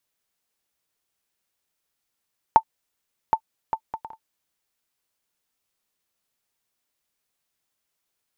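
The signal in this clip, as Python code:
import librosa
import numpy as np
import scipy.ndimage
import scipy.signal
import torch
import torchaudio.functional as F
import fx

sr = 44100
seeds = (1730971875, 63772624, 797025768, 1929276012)

y = fx.bouncing_ball(sr, first_gap_s=0.77, ratio=0.52, hz=889.0, decay_ms=73.0, level_db=-2.5)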